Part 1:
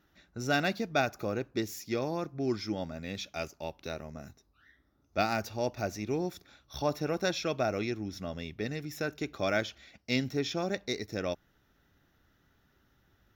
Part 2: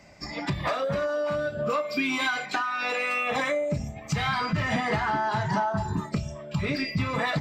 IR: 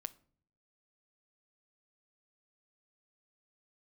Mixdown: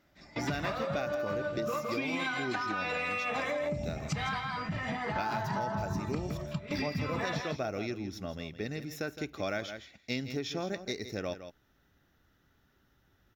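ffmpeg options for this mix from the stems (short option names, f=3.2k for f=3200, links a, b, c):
-filter_complex "[0:a]volume=-1dB,asplit=3[a][b][c];[b]volume=-12.5dB[d];[1:a]highshelf=f=7k:g=-8.5,volume=-1dB,asplit=2[e][f];[f]volume=-6.5dB[g];[c]apad=whole_len=326661[h];[e][h]sidechaingate=range=-18dB:threshold=-57dB:ratio=16:detection=peak[i];[d][g]amix=inputs=2:normalize=0,aecho=0:1:163:1[j];[a][i][j]amix=inputs=3:normalize=0,acompressor=threshold=-30dB:ratio=6"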